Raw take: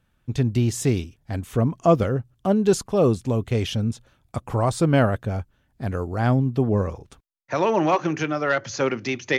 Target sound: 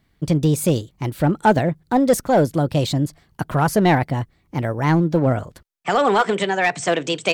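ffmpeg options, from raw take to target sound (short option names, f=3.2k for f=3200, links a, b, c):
-filter_complex "[0:a]asplit=2[a][b];[b]aeval=exprs='0.168*(abs(mod(val(0)/0.168+3,4)-2)-1)':c=same,volume=-10dB[c];[a][c]amix=inputs=2:normalize=0,asetrate=56448,aresample=44100,volume=1.5dB"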